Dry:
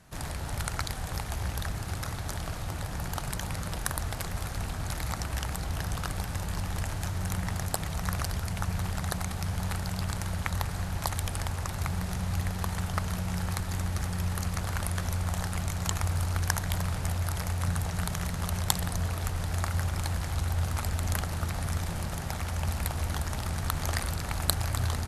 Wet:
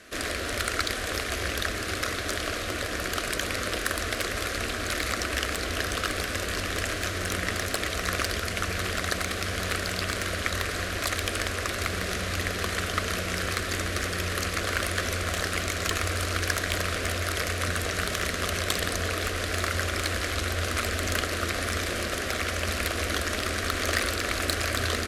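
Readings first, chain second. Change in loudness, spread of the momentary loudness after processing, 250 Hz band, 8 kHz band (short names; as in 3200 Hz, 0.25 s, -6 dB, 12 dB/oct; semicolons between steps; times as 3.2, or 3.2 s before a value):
+4.0 dB, 2 LU, +2.5 dB, +4.5 dB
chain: overdrive pedal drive 25 dB, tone 2000 Hz, clips at -2.5 dBFS; fixed phaser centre 360 Hz, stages 4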